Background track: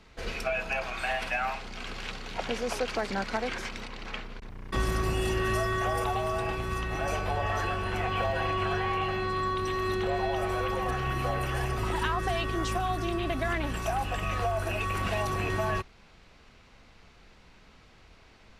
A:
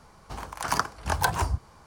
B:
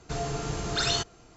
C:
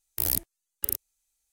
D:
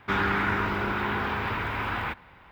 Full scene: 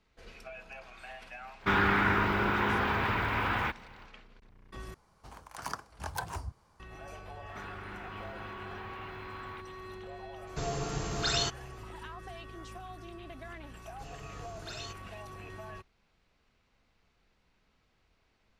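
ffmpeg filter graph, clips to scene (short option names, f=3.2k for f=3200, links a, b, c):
-filter_complex "[4:a]asplit=2[a][b];[2:a]asplit=2[c][d];[0:a]volume=-16dB[e];[b]acompressor=threshold=-40dB:ratio=6:attack=3.2:release=140:knee=1:detection=peak[f];[e]asplit=2[g][h];[g]atrim=end=4.944[i];[1:a]atrim=end=1.86,asetpts=PTS-STARTPTS,volume=-12.5dB[j];[h]atrim=start=6.796[k];[a]atrim=end=2.51,asetpts=PTS-STARTPTS,volume=-0.5dB,afade=t=in:d=0.05,afade=t=out:st=2.46:d=0.05,adelay=1580[l];[f]atrim=end=2.51,asetpts=PTS-STARTPTS,volume=-4dB,afade=t=in:d=0.004:c=hsin,afade=t=out:st=2.506:d=0.004:c=hsin,adelay=7480[m];[c]atrim=end=1.36,asetpts=PTS-STARTPTS,volume=-3dB,afade=t=in:d=0.004:c=hsin,afade=t=out:st=1.356:d=0.004:c=hsin,adelay=10470[n];[d]atrim=end=1.36,asetpts=PTS-STARTPTS,volume=-17dB,afade=t=in:d=0.004:c=hsin,afade=t=out:st=1.356:d=0.004:c=hsin,adelay=13900[o];[i][j]acrossfade=d=0.004:c1=hsin:c2=hsin[p];[p][k]acrossfade=d=0.004:c1=hsin:c2=hsin[q];[q][l][m][n][o]amix=inputs=5:normalize=0"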